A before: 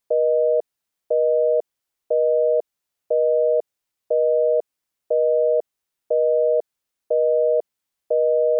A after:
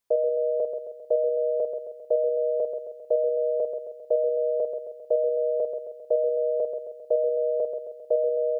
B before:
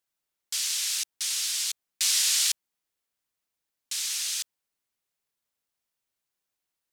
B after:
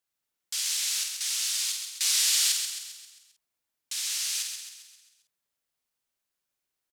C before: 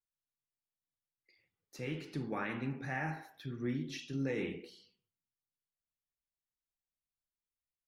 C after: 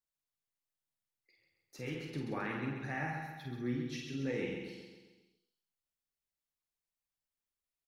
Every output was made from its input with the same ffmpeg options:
-filter_complex "[0:a]asplit=2[s0][s1];[s1]adelay=49,volume=0.531[s2];[s0][s2]amix=inputs=2:normalize=0,asplit=2[s3][s4];[s4]aecho=0:1:133|266|399|532|665|798:0.473|0.241|0.123|0.0628|0.032|0.0163[s5];[s3][s5]amix=inputs=2:normalize=0,volume=0.794"

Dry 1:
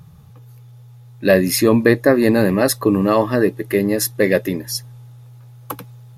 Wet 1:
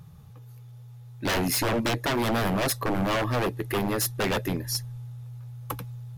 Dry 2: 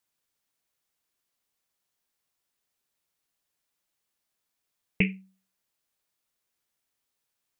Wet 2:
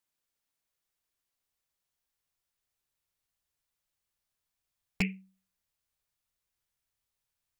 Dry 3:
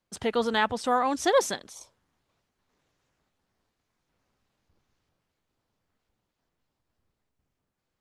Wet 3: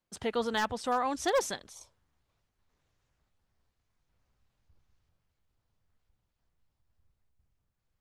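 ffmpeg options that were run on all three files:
-af "asubboost=boost=4.5:cutoff=120,aeval=exprs='0.168*(abs(mod(val(0)/0.168+3,4)-2)-1)':c=same,volume=0.596"

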